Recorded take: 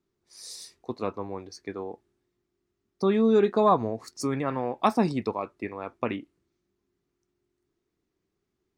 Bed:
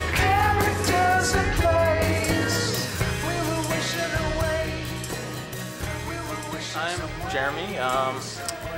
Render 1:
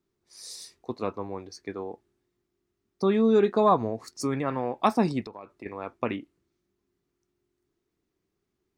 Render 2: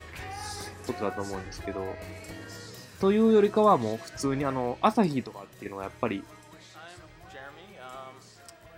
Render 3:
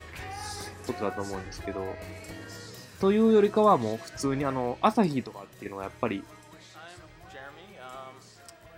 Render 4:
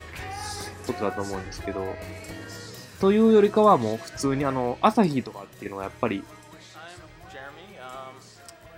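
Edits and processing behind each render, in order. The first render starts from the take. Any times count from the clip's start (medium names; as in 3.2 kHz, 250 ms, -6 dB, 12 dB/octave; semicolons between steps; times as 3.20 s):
5.21–5.66 s: compression 4:1, threshold -39 dBFS
add bed -19 dB
no audible change
trim +3.5 dB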